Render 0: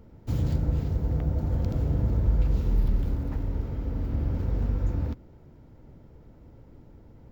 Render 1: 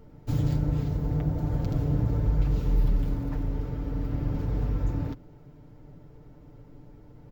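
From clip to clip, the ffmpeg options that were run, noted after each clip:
-af "aecho=1:1:6.8:0.65"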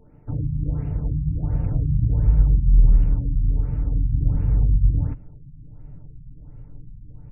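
-af "asubboost=boost=4.5:cutoff=160,afftfilt=real='re*lt(b*sr/1024,250*pow(3000/250,0.5+0.5*sin(2*PI*1.4*pts/sr)))':imag='im*lt(b*sr/1024,250*pow(3000/250,0.5+0.5*sin(2*PI*1.4*pts/sr)))':win_size=1024:overlap=0.75,volume=-1.5dB"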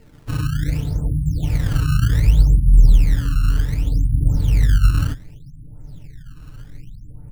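-af "acrusher=samples=18:mix=1:aa=0.000001:lfo=1:lforange=28.8:lforate=0.66,volume=3.5dB"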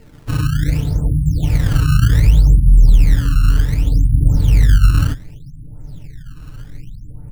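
-af "alimiter=level_in=5.5dB:limit=-1dB:release=50:level=0:latency=1,volume=-1dB"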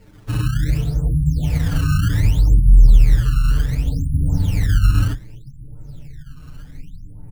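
-filter_complex "[0:a]asplit=2[a][b];[b]adelay=7.3,afreqshift=0.4[c];[a][c]amix=inputs=2:normalize=1"

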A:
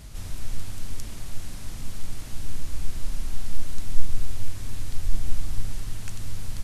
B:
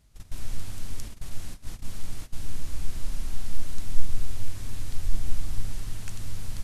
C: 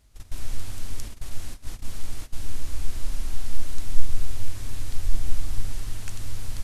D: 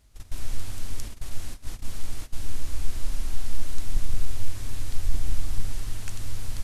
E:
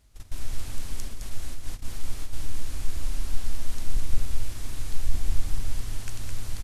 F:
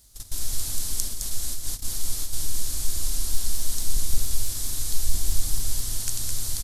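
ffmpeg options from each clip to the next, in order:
-af "agate=range=-17dB:threshold=-29dB:ratio=16:detection=peak,volume=-1.5dB"
-af "equalizer=f=160:t=o:w=0.51:g=-9.5,volume=2.5dB"
-af "aeval=exprs='0.355*(abs(mod(val(0)/0.355+3,4)-2)-1)':c=same"
-af "aecho=1:1:212:0.531,volume=-1dB"
-af "aexciter=amount=5.6:drive=2.9:freq=3.6k"

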